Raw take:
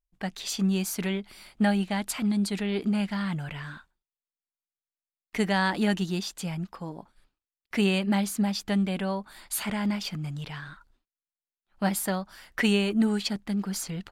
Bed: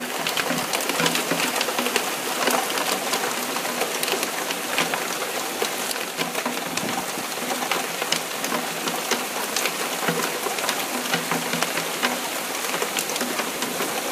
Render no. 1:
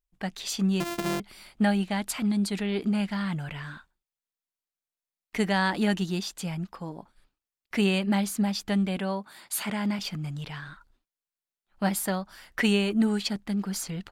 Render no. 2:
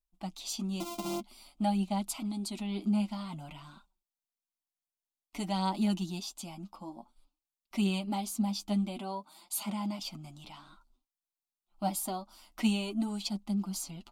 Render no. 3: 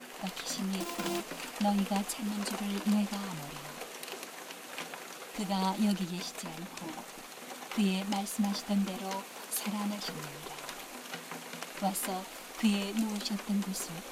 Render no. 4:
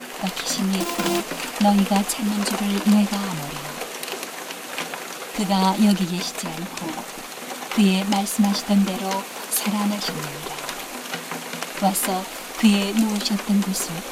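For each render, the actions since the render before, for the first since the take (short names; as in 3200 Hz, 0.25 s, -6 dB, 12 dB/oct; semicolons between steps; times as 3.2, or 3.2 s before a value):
0.8–1.2 sample sorter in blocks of 128 samples; 8.97–9.99 HPF 130 Hz
flange 0.52 Hz, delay 4.8 ms, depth 5.2 ms, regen +26%; fixed phaser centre 460 Hz, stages 6
add bed -18.5 dB
gain +12 dB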